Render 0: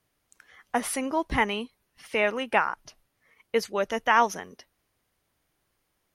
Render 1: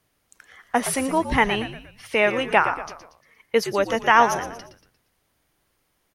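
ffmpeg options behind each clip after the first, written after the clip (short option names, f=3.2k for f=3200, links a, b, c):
-filter_complex "[0:a]asplit=5[a][b][c][d][e];[b]adelay=117,afreqshift=-81,volume=-11dB[f];[c]adelay=234,afreqshift=-162,volume=-18.3dB[g];[d]adelay=351,afreqshift=-243,volume=-25.7dB[h];[e]adelay=468,afreqshift=-324,volume=-33dB[i];[a][f][g][h][i]amix=inputs=5:normalize=0,volume=5dB"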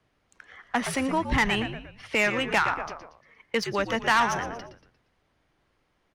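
-filter_complex "[0:a]acrossover=split=250|1000[a][b][c];[b]acompressor=threshold=-31dB:ratio=6[d];[a][d][c]amix=inputs=3:normalize=0,asoftclip=type=tanh:threshold=-16dB,adynamicsmooth=sensitivity=2.5:basefreq=4.2k,volume=1.5dB"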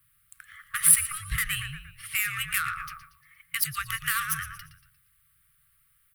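-af "afftfilt=real='re*(1-between(b*sr/4096,170,1100))':imag='im*(1-between(b*sr/4096,170,1100))':win_size=4096:overlap=0.75,acompressor=threshold=-26dB:ratio=4,aexciter=amount=11.9:drive=9.3:freq=9.1k"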